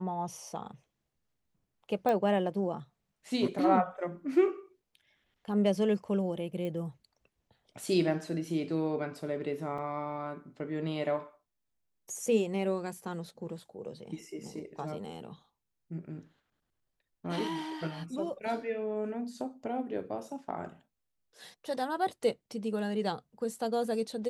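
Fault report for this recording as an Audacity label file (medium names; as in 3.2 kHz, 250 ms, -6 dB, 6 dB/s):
2.090000	2.090000	pop -19 dBFS
6.650000	6.650000	pop -27 dBFS
9.780000	9.780000	dropout 3 ms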